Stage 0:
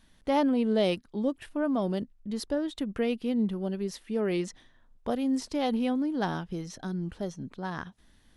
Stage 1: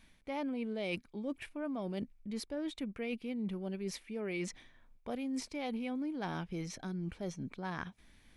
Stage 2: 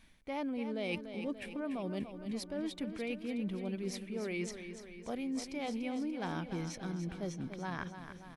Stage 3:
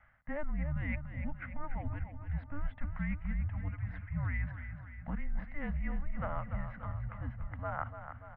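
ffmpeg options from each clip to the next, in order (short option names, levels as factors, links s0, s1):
-af "equalizer=f=2300:t=o:w=0.22:g=14,areverse,acompressor=threshold=0.02:ratio=6,areverse,volume=0.841"
-af "aecho=1:1:291|582|873|1164|1455|1746|2037:0.335|0.201|0.121|0.0724|0.0434|0.026|0.0156"
-af "asuperstop=centerf=670:order=4:qfactor=1.9,highpass=f=210:t=q:w=0.5412,highpass=f=210:t=q:w=1.307,lowpass=f=2200:t=q:w=0.5176,lowpass=f=2200:t=q:w=0.7071,lowpass=f=2200:t=q:w=1.932,afreqshift=-290,volume=1.88"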